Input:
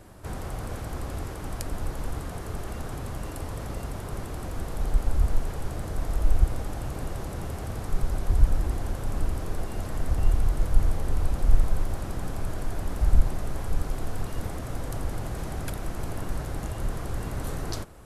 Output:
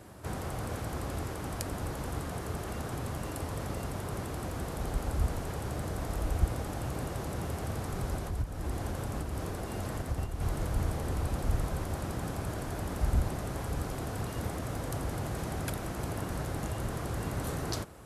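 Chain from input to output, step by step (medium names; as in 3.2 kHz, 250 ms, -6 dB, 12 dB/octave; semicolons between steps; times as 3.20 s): 8.14–10.41 s: compression 5:1, threshold -22 dBFS, peak gain reduction 11.5 dB; high-pass 70 Hz 12 dB/octave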